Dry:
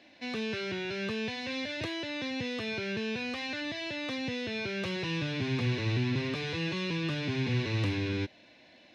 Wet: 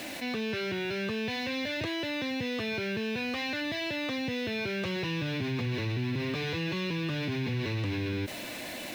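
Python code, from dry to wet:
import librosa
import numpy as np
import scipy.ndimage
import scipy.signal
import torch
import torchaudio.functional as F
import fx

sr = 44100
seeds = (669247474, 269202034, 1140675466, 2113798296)

y = fx.high_shelf(x, sr, hz=4700.0, db=-4.0)
y = fx.quant_dither(y, sr, seeds[0], bits=10, dither='none')
y = fx.env_flatten(y, sr, amount_pct=70)
y = y * 10.0 ** (-3.5 / 20.0)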